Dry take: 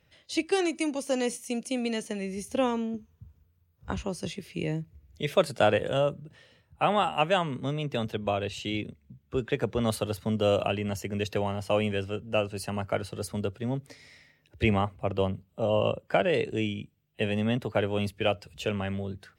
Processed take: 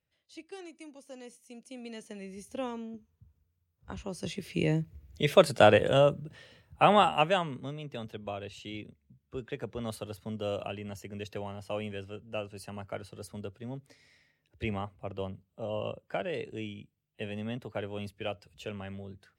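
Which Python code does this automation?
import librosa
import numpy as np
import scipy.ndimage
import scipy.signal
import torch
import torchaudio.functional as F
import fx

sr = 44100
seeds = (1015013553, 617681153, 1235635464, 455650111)

y = fx.gain(x, sr, db=fx.line((1.36, -19.0), (2.19, -9.5), (3.9, -9.5), (4.51, 3.0), (7.0, 3.0), (7.78, -9.5)))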